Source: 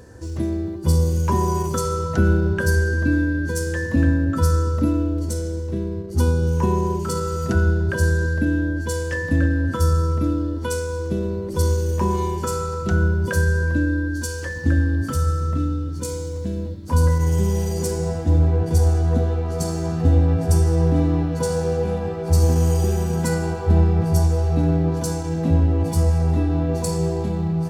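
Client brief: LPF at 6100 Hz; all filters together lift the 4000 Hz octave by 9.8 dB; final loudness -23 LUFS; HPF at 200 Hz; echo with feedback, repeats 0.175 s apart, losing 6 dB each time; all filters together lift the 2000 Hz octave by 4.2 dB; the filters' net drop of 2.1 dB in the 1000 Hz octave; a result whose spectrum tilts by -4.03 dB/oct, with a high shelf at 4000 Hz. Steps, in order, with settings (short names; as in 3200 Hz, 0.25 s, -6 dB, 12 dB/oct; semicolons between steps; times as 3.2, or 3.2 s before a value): HPF 200 Hz; LPF 6100 Hz; bell 1000 Hz -5.5 dB; bell 2000 Hz +6 dB; high shelf 4000 Hz +5.5 dB; bell 4000 Hz +9 dB; feedback echo 0.175 s, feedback 50%, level -6 dB; gain +1 dB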